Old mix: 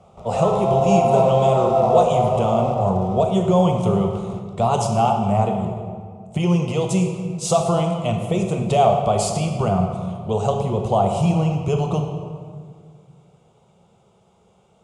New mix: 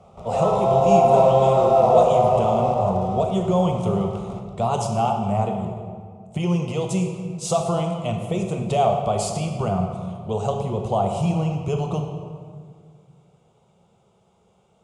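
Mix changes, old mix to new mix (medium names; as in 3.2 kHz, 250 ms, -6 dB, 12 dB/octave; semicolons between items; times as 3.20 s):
speech -3.5 dB; background: send +7.5 dB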